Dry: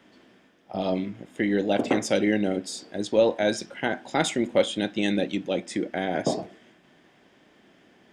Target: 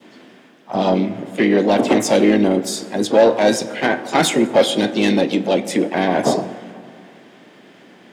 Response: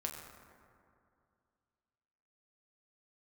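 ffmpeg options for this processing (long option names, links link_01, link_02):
-filter_complex "[0:a]asoftclip=type=tanh:threshold=-16.5dB,highpass=frequency=120:width=0.5412,highpass=frequency=120:width=1.3066,equalizer=frequency=5400:width_type=o:width=0.75:gain=-2,asplit=2[link_01][link_02];[1:a]atrim=start_sample=2205[link_03];[link_02][link_03]afir=irnorm=-1:irlink=0,volume=-7dB[link_04];[link_01][link_04]amix=inputs=2:normalize=0,acontrast=67,adynamicequalizer=threshold=0.0282:dfrequency=1500:dqfactor=1.1:tfrequency=1500:tqfactor=1.1:attack=5:release=100:ratio=0.375:range=2:mode=cutabove:tftype=bell,asplit=3[link_05][link_06][link_07];[link_06]asetrate=52444,aresample=44100,atempo=0.840896,volume=-9dB[link_08];[link_07]asetrate=66075,aresample=44100,atempo=0.66742,volume=-13dB[link_09];[link_05][link_08][link_09]amix=inputs=3:normalize=0,volume=1.5dB"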